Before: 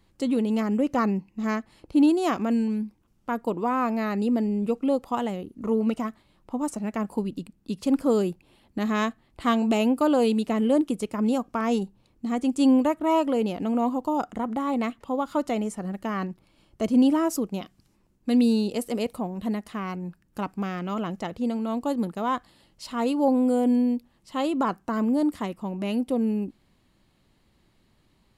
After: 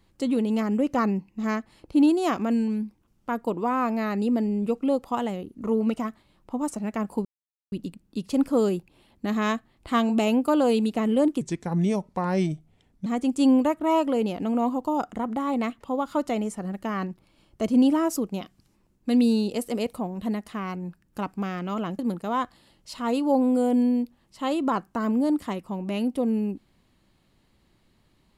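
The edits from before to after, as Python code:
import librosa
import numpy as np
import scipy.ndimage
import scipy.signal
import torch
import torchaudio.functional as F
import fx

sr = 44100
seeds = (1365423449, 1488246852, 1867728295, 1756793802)

y = fx.edit(x, sr, fx.insert_silence(at_s=7.25, length_s=0.47),
    fx.speed_span(start_s=10.94, length_s=1.32, speed=0.8),
    fx.cut(start_s=21.19, length_s=0.73), tone=tone)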